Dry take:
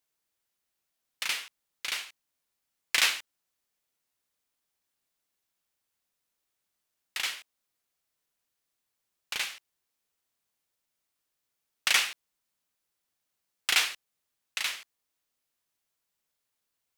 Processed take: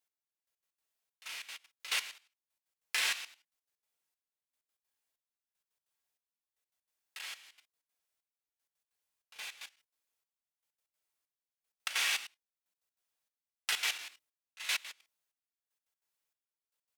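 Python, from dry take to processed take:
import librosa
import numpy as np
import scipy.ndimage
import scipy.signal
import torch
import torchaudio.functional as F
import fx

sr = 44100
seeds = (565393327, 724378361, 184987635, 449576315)

y = fx.peak_eq(x, sr, hz=160.0, db=-7.0, octaves=1.9)
y = fx.hum_notches(y, sr, base_hz=60, count=5)
y = fx.rev_gated(y, sr, seeds[0], gate_ms=250, shape='falling', drr_db=-6.0)
y = fx.level_steps(y, sr, step_db=14)
y = fx.step_gate(y, sr, bpm=192, pattern='x.....x.x.xxx', floor_db=-12.0, edge_ms=4.5)
y = y * 10.0 ** (-3.0 / 20.0)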